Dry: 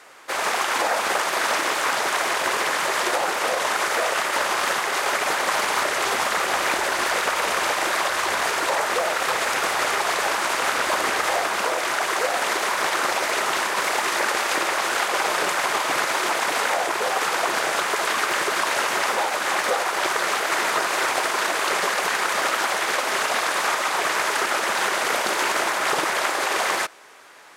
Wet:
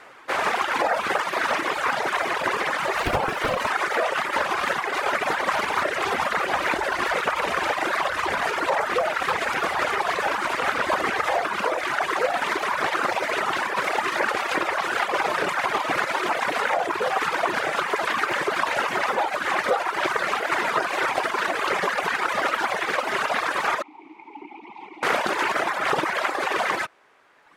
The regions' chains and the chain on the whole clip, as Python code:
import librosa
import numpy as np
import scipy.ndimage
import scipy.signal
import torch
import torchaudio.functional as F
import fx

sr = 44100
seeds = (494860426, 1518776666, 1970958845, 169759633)

y = fx.chain(x, sr, fx.high_shelf(hz=12000.0, db=8.0),
    fx.doppler_dist(depth_ms=0.65), at=(2.96, 3.7))
y = fx.chain(y, sr, fx.vowel_filter(vowel='u'),
    fx.peak_eq(hz=1500.0, db=-7.0, octaves=1.2), at=(23.82, 25.03))
y = fx.dereverb_blind(y, sr, rt60_s=1.7)
y = fx.bass_treble(y, sr, bass_db=5, treble_db=-12)
y = y * librosa.db_to_amplitude(2.5)